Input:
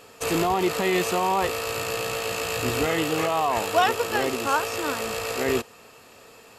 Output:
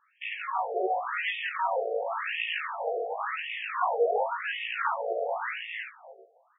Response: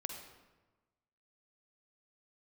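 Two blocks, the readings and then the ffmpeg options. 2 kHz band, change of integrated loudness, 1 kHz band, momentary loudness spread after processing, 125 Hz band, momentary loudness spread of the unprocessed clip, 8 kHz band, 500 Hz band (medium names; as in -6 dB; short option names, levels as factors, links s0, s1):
-3.0 dB, -6.0 dB, -4.5 dB, 7 LU, under -40 dB, 5 LU, under -40 dB, -5.5 dB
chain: -filter_complex "[0:a]afwtdn=0.0251,flanger=delay=17.5:depth=3.6:speed=0.37,acrossover=split=120|530|2600[s0][s1][s2][s3];[s2]alimiter=limit=0.0668:level=0:latency=1:release=85[s4];[s0][s1][s4][s3]amix=inputs=4:normalize=0,asubboost=boost=8:cutoff=110,acompressor=threshold=0.0398:ratio=6,asplit=2[s5][s6];[s6]adelay=19,volume=0.596[s7];[s5][s7]amix=inputs=2:normalize=0,aecho=1:1:317|634|951:0.708|0.113|0.0181,afftfilt=real='re*between(b*sr/1024,520*pow(2600/520,0.5+0.5*sin(2*PI*0.92*pts/sr))/1.41,520*pow(2600/520,0.5+0.5*sin(2*PI*0.92*pts/sr))*1.41)':imag='im*between(b*sr/1024,520*pow(2600/520,0.5+0.5*sin(2*PI*0.92*pts/sr))/1.41,520*pow(2600/520,0.5+0.5*sin(2*PI*0.92*pts/sr))*1.41)':win_size=1024:overlap=0.75,volume=2.24"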